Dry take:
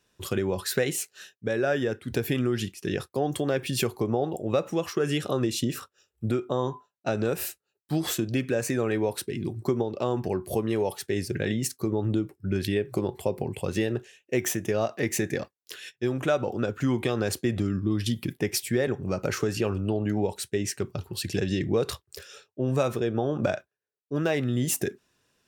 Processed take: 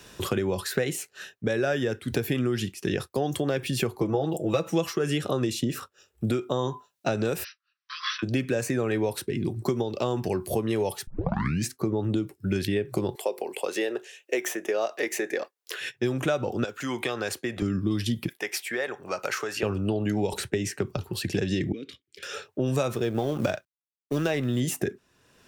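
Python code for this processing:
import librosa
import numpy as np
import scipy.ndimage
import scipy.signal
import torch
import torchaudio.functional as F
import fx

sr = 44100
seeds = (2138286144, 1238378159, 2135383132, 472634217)

y = fx.comb(x, sr, ms=6.1, depth=0.76, at=(4.01, 4.97))
y = fx.brickwall_bandpass(y, sr, low_hz=1000.0, high_hz=6000.0, at=(7.43, 8.22), fade=0.02)
y = fx.highpass(y, sr, hz=380.0, slope=24, at=(13.15, 15.81))
y = fx.highpass(y, sr, hz=1000.0, slope=6, at=(16.64, 17.62))
y = fx.highpass(y, sr, hz=780.0, slope=12, at=(18.28, 19.63))
y = fx.band_squash(y, sr, depth_pct=70, at=(20.32, 20.97))
y = fx.vowel_filter(y, sr, vowel='i', at=(21.72, 22.23))
y = fx.law_mismatch(y, sr, coded='A', at=(22.95, 24.6))
y = fx.edit(y, sr, fx.tape_start(start_s=11.07, length_s=0.64), tone=tone)
y = fx.band_squash(y, sr, depth_pct=70)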